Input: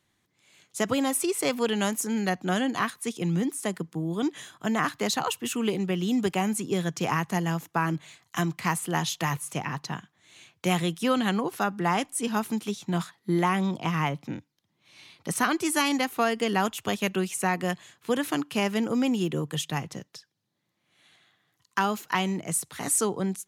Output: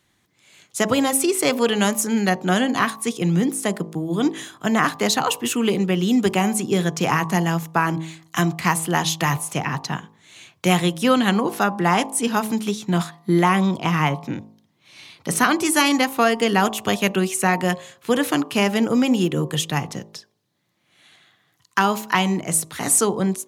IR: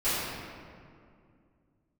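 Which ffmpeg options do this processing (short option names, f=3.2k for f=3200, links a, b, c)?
-af "bandreject=f=53.77:t=h:w=4,bandreject=f=107.54:t=h:w=4,bandreject=f=161.31:t=h:w=4,bandreject=f=215.08:t=h:w=4,bandreject=f=268.85:t=h:w=4,bandreject=f=322.62:t=h:w=4,bandreject=f=376.39:t=h:w=4,bandreject=f=430.16:t=h:w=4,bandreject=f=483.93:t=h:w=4,bandreject=f=537.7:t=h:w=4,bandreject=f=591.47:t=h:w=4,bandreject=f=645.24:t=h:w=4,bandreject=f=699.01:t=h:w=4,bandreject=f=752.78:t=h:w=4,bandreject=f=806.55:t=h:w=4,bandreject=f=860.32:t=h:w=4,bandreject=f=914.09:t=h:w=4,bandreject=f=967.86:t=h:w=4,bandreject=f=1.02163k:t=h:w=4,bandreject=f=1.0754k:t=h:w=4,bandreject=f=1.12917k:t=h:w=4,bandreject=f=1.18294k:t=h:w=4,volume=7.5dB"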